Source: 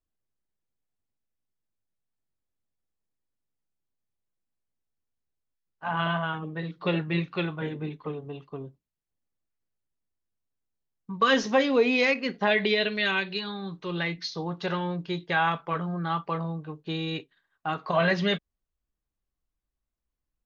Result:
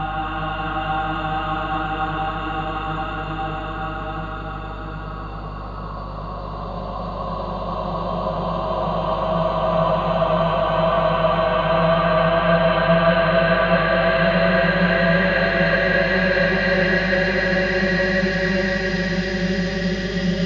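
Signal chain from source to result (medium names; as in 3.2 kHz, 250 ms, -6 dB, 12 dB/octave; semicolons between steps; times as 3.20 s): Paulstretch 39×, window 0.25 s, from 17.68 s; two-band feedback delay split 1 kHz, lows 405 ms, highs 276 ms, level -4 dB; hum 50 Hz, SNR 12 dB; trim +3 dB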